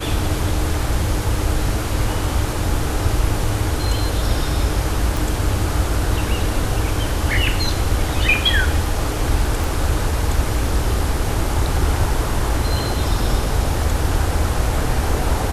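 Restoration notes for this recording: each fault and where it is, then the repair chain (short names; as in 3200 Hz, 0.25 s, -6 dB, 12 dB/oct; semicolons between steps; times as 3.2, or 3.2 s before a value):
5.17 pop
9.64 pop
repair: de-click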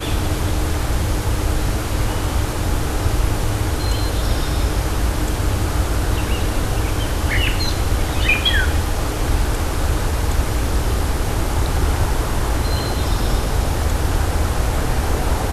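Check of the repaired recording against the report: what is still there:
9.64 pop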